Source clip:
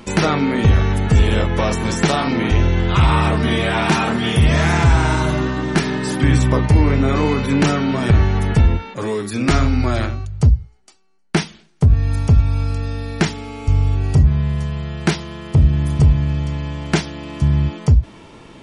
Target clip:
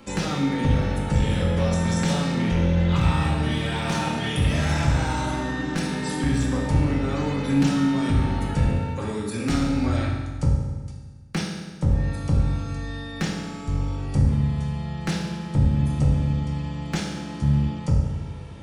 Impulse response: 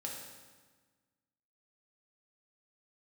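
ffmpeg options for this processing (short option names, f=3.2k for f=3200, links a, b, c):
-filter_complex "[0:a]aeval=exprs='clip(val(0),-1,0.237)':c=same,acrossover=split=220|3000[a][b][c];[b]acompressor=threshold=-22dB:ratio=6[d];[a][d][c]amix=inputs=3:normalize=0[e];[1:a]atrim=start_sample=2205[f];[e][f]afir=irnorm=-1:irlink=0,volume=-4dB"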